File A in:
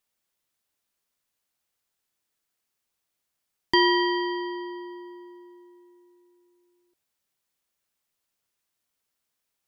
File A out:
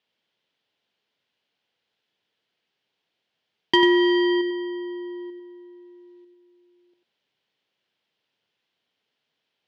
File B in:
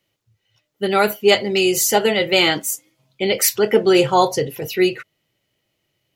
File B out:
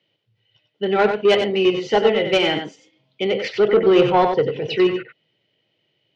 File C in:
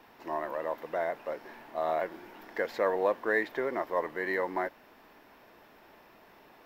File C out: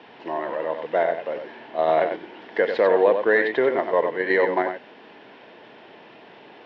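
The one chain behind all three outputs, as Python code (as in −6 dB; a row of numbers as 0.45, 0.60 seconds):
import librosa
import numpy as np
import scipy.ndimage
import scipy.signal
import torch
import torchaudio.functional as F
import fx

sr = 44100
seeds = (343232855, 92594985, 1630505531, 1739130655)

p1 = fx.cabinet(x, sr, low_hz=110.0, low_slope=24, high_hz=4300.0, hz=(450.0, 1200.0, 3100.0), db=(4, -6, 6))
p2 = fx.env_lowpass_down(p1, sr, base_hz=2100.0, full_db=-15.5)
p3 = fx.level_steps(p2, sr, step_db=15)
p4 = p2 + (p3 * 10.0 ** (3.0 / 20.0))
p5 = 10.0 ** (-4.0 / 20.0) * np.tanh(p4 / 10.0 ** (-4.0 / 20.0))
p6 = p5 + fx.echo_single(p5, sr, ms=94, db=-7.0, dry=0)
y = librosa.util.normalize(p6) * 10.0 ** (-6 / 20.0)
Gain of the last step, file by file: +0.5, −4.5, +3.5 decibels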